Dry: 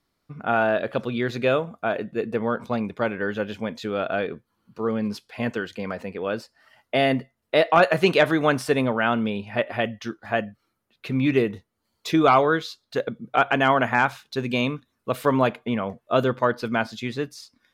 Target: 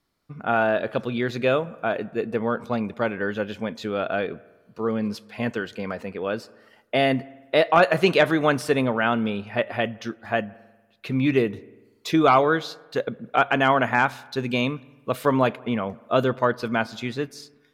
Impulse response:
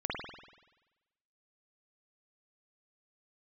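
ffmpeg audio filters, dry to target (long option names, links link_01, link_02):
-filter_complex "[0:a]asplit=2[link_01][link_02];[1:a]atrim=start_sample=2205,lowpass=2400,adelay=113[link_03];[link_02][link_03]afir=irnorm=-1:irlink=0,volume=-29dB[link_04];[link_01][link_04]amix=inputs=2:normalize=0"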